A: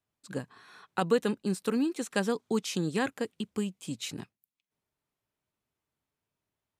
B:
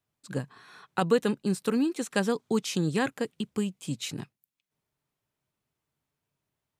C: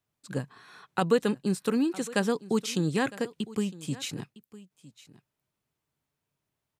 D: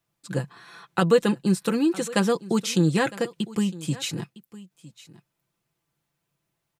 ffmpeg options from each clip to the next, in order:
ffmpeg -i in.wav -af "equalizer=frequency=140:width=3.8:gain=6.5,volume=2dB" out.wav
ffmpeg -i in.wav -af "aecho=1:1:958:0.112" out.wav
ffmpeg -i in.wav -af "aecho=1:1:5.9:0.55,volume=4dB" out.wav

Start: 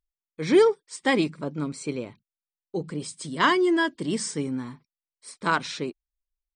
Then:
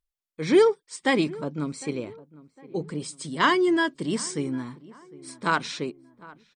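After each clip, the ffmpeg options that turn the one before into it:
ffmpeg -i in.wav -filter_complex "[0:a]asplit=2[link_01][link_02];[link_02]adelay=756,lowpass=frequency=1400:poles=1,volume=-20dB,asplit=2[link_03][link_04];[link_04]adelay=756,lowpass=frequency=1400:poles=1,volume=0.45,asplit=2[link_05][link_06];[link_06]adelay=756,lowpass=frequency=1400:poles=1,volume=0.45[link_07];[link_01][link_03][link_05][link_07]amix=inputs=4:normalize=0" out.wav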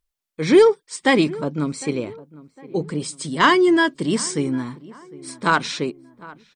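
ffmpeg -i in.wav -af "acontrast=61" out.wav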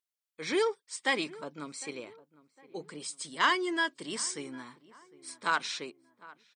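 ffmpeg -i in.wav -af "highpass=frequency=1100:poles=1,volume=-7.5dB" out.wav

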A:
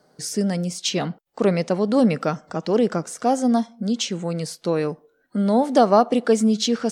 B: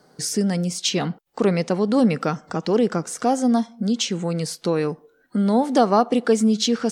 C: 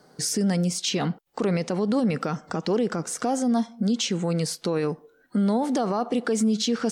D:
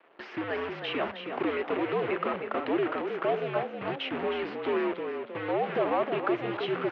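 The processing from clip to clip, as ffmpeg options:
ffmpeg -i in.wav -filter_complex "[0:a]equalizer=frequency=610:width_type=o:width=0.25:gain=-6,asplit=2[link_01][link_02];[link_02]acompressor=threshold=-29dB:ratio=6,volume=0.5dB[link_03];[link_01][link_03]amix=inputs=2:normalize=0,volume=-1.5dB" out.wav
ffmpeg -i in.wav -af "alimiter=limit=-16dB:level=0:latency=1:release=37" out.wav
ffmpeg -i in.wav -filter_complex "[0:a]acrusher=bits=6:dc=4:mix=0:aa=0.000001,asplit=6[link_01][link_02][link_03][link_04][link_05][link_06];[link_02]adelay=315,afreqshift=51,volume=-7.5dB[link_07];[link_03]adelay=630,afreqshift=102,volume=-14.4dB[link_08];[link_04]adelay=945,afreqshift=153,volume=-21.4dB[link_09];[link_05]adelay=1260,afreqshift=204,volume=-28.3dB[link_10];[link_06]adelay=1575,afreqshift=255,volume=-35.2dB[link_11];[link_01][link_07][link_08][link_09][link_10][link_11]amix=inputs=6:normalize=0,highpass=frequency=430:width_type=q:width=0.5412,highpass=frequency=430:width_type=q:width=1.307,lowpass=frequency=2900:width_type=q:width=0.5176,lowpass=frequency=2900:width_type=q:width=0.7071,lowpass=frequency=2900:width_type=q:width=1.932,afreqshift=-92" out.wav

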